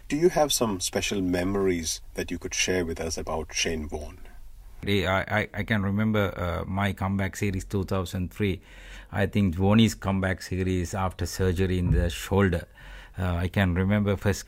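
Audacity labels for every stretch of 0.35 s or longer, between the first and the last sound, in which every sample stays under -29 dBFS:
4.070000	4.830000	silence
8.540000	9.130000	silence
12.600000	13.180000	silence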